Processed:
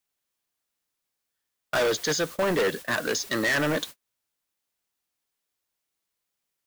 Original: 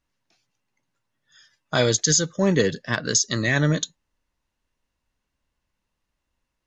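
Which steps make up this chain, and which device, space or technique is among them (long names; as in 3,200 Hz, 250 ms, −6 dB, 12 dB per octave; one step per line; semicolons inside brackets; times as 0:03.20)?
aircraft radio (band-pass filter 360–2,500 Hz; hard clipping −27 dBFS, distortion −5 dB; white noise bed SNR 13 dB; noise gate −42 dBFS, range −39 dB)
level +6 dB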